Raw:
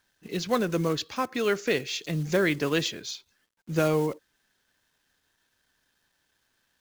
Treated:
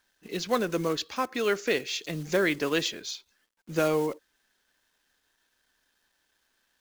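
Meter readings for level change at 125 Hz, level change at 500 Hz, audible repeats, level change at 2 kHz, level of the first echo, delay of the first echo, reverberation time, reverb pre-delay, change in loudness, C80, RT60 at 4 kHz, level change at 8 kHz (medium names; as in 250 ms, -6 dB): -6.5 dB, -0.5 dB, no echo, 0.0 dB, no echo, no echo, no reverb, no reverb, -1.0 dB, no reverb, no reverb, 0.0 dB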